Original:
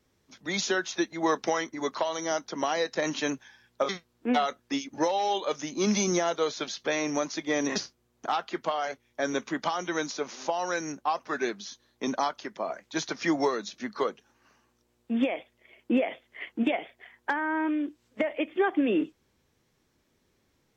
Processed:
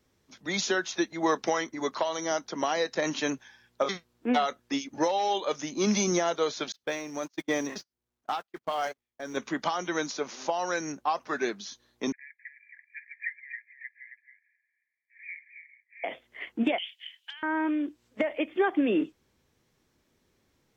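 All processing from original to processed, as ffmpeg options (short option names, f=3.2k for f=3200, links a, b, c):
-filter_complex "[0:a]asettb=1/sr,asplit=3[a][b][c];[a]atrim=end=6.724[d];[b]atrim=start=6.72:end=9.37,asetpts=PTS-STARTPTS,afade=t=in:d=0.004:c=qsin,afade=t=out:st=2.646:d=0.004:c=qsin,aeval=exprs='val(0)+0.5*0.00891*sgn(val(0))':c=same,agate=range=-40dB:threshold=-32dB:ratio=16:release=100:detection=peak,tremolo=f=1.4:d=0.7[e];[c]atrim=start=9.366[f];[d][e]acrossfade=d=0.004:c1=hsin:c2=qsin[g];[g][f]acrossfade=d=0.004:c1=qsin:c2=hsin,asettb=1/sr,asplit=3[h][i][j];[h]atrim=end=12.124[k];[i]atrim=start=12.12:end=16.04,asetpts=PTS-STARTPTS,afade=t=in:d=0.004:c=qsin,afade=t=out:st=3.916:d=0.004:c=qsin,asuperpass=centerf=2000:order=20:qfactor=2.7,aecho=1:1:271:0.398,atrim=end_sample=172872[l];[j]atrim=start=16.036[m];[k][l]acrossfade=d=0.004:c1=hsin:c2=qsin[n];[n][m]acrossfade=d=0.004:c1=qsin:c2=hsin,asettb=1/sr,asplit=3[o][p][q];[o]atrim=end=16.784[r];[p]atrim=start=16.78:end=17.43,asetpts=PTS-STARTPTS,afade=t=in:d=0.004:c=qsin,afade=t=out:st=0.646:d=0.004:c=qsin,acompressor=threshold=-35dB:ratio=3:attack=3.2:release=140:knee=1:detection=peak,highpass=f=3k:t=q:w=11[s];[q]atrim=start=17.426[t];[r][s]acrossfade=d=0.004:c1=hsin:c2=qsin[u];[u][t]acrossfade=d=0.004:c1=qsin:c2=hsin"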